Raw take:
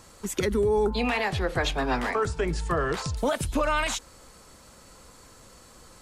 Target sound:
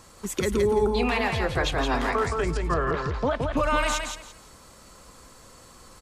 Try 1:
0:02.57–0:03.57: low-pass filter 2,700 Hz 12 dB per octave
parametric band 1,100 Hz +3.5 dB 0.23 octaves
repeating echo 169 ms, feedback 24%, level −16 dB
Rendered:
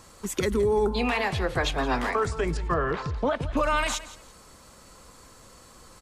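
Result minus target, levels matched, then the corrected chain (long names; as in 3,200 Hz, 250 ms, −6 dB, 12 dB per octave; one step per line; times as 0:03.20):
echo-to-direct −11 dB
0:02.57–0:03.57: low-pass filter 2,700 Hz 12 dB per octave
parametric band 1,100 Hz +3.5 dB 0.23 octaves
repeating echo 169 ms, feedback 24%, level −5 dB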